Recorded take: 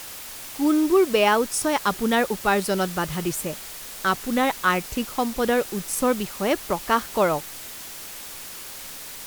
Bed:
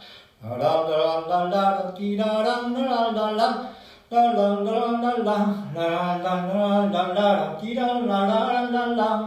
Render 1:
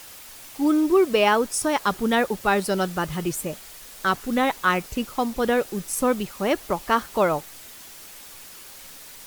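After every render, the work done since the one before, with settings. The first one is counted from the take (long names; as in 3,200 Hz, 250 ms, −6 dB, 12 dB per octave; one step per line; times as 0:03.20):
broadband denoise 6 dB, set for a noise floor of −38 dBFS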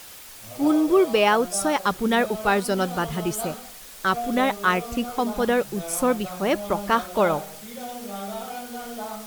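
mix in bed −12.5 dB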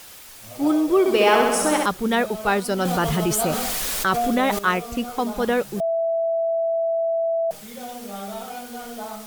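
0:00.99–0:01.86: flutter between parallel walls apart 11.3 metres, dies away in 1.2 s
0:02.85–0:04.59: envelope flattener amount 70%
0:05.80–0:07.51: beep over 662 Hz −19 dBFS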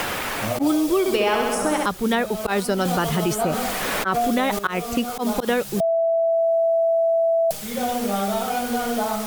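volume swells 125 ms
multiband upward and downward compressor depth 100%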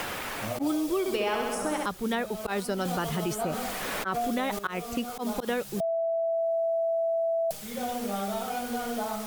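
level −8 dB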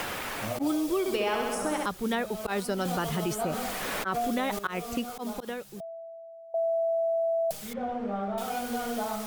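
0:04.94–0:06.54: fade out quadratic, to −20.5 dB
0:07.73–0:08.38: low-pass filter 1,500 Hz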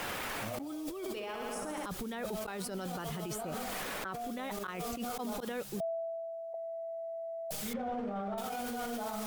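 compressor whose output falls as the input rises −36 dBFS, ratio −1
brickwall limiter −29 dBFS, peak gain reduction 11 dB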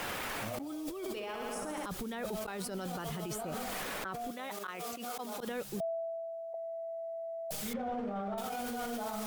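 0:04.31–0:05.40: high-pass filter 460 Hz 6 dB per octave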